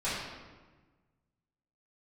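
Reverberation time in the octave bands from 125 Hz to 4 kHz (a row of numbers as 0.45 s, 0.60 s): 2.0 s, 1.7 s, 1.4 s, 1.3 s, 1.1 s, 0.90 s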